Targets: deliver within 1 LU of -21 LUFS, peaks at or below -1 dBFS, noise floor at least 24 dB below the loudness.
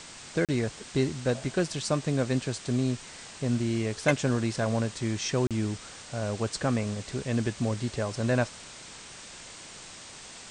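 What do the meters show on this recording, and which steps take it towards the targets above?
dropouts 2; longest dropout 37 ms; noise floor -46 dBFS; noise floor target -54 dBFS; loudness -29.5 LUFS; peak -10.0 dBFS; loudness target -21.0 LUFS
-> interpolate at 0.45/5.47, 37 ms; noise print and reduce 8 dB; gain +8.5 dB

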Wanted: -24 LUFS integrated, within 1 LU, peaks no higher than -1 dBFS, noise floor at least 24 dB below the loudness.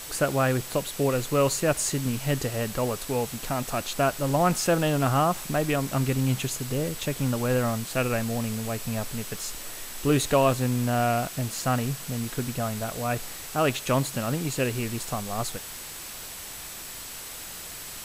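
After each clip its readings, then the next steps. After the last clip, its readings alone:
steady tone 7900 Hz; tone level -47 dBFS; noise floor -39 dBFS; noise floor target -51 dBFS; loudness -27.0 LUFS; peak -9.5 dBFS; loudness target -24.0 LUFS
-> notch 7900 Hz, Q 30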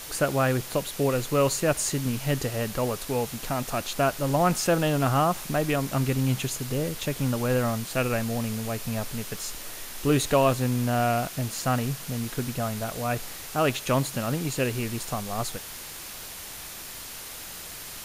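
steady tone none; noise floor -40 dBFS; noise floor target -52 dBFS
-> denoiser 12 dB, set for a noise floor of -40 dBFS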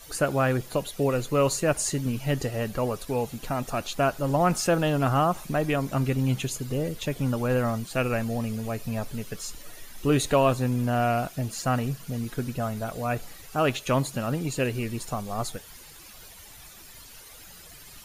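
noise floor -47 dBFS; noise floor target -51 dBFS
-> denoiser 6 dB, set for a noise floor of -47 dBFS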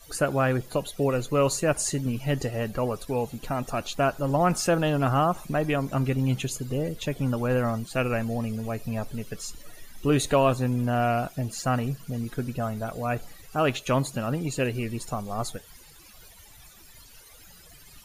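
noise floor -51 dBFS; loudness -27.0 LUFS; peak -10.0 dBFS; loudness target -24.0 LUFS
-> gain +3 dB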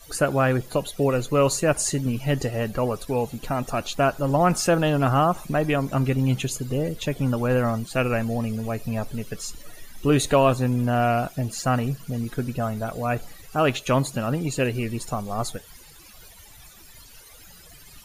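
loudness -24.0 LUFS; peak -7.0 dBFS; noise floor -48 dBFS

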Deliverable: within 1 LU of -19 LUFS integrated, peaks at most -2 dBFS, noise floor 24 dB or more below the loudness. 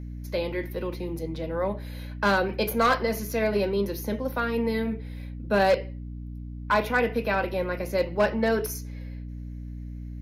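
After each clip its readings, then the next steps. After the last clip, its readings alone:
clipped 0.5%; flat tops at -15.0 dBFS; hum 60 Hz; harmonics up to 300 Hz; hum level -34 dBFS; loudness -26.5 LUFS; peak -15.0 dBFS; loudness target -19.0 LUFS
-> clip repair -15 dBFS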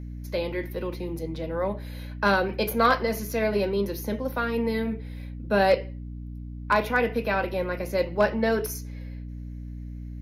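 clipped 0.0%; hum 60 Hz; harmonics up to 300 Hz; hum level -34 dBFS
-> notches 60/120/180/240/300 Hz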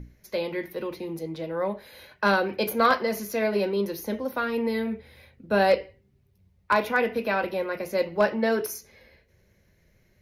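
hum none; loudness -26.5 LUFS; peak -6.0 dBFS; loudness target -19.0 LUFS
-> gain +7.5 dB; limiter -2 dBFS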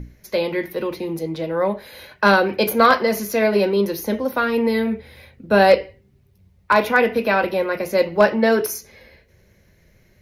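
loudness -19.0 LUFS; peak -2.0 dBFS; noise floor -57 dBFS

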